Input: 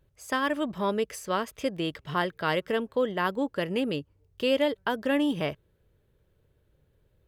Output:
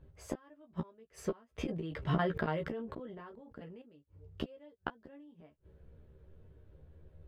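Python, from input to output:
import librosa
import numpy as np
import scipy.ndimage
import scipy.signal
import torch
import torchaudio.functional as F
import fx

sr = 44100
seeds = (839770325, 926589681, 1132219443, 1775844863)

y = fx.lowpass(x, sr, hz=1100.0, slope=6)
y = fx.low_shelf(y, sr, hz=170.0, db=3.0)
y = fx.gate_flip(y, sr, shuts_db=-26.0, range_db=-37)
y = fx.chorus_voices(y, sr, voices=4, hz=0.4, base_ms=14, depth_ms=4.0, mix_pct=30)
y = fx.doubler(y, sr, ms=13.0, db=-4)
y = fx.sustainer(y, sr, db_per_s=23.0, at=(1.58, 3.82))
y = y * librosa.db_to_amplitude(8.0)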